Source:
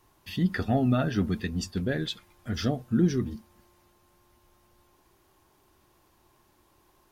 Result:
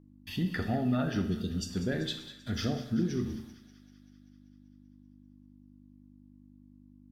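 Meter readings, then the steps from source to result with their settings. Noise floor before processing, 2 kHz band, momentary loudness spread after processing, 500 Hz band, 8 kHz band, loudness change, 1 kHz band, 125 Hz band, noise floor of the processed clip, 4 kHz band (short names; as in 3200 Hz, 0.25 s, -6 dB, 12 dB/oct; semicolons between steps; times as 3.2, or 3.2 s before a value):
-65 dBFS, -3.5 dB, 10 LU, -5.0 dB, -2.5 dB, -4.5 dB, -5.0 dB, -5.0 dB, -57 dBFS, -1.5 dB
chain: spectral delete 1.24–1.7, 650–2700 Hz; gate -52 dBFS, range -27 dB; compressor, threshold -24 dBFS, peak gain reduction 7 dB; buzz 50 Hz, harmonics 6, -56 dBFS 0 dB/oct; on a send: thin delay 0.194 s, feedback 66%, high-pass 1400 Hz, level -13.5 dB; on the sum: Schroeder reverb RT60 0.72 s, combs from 28 ms, DRR 7 dB; gain -2.5 dB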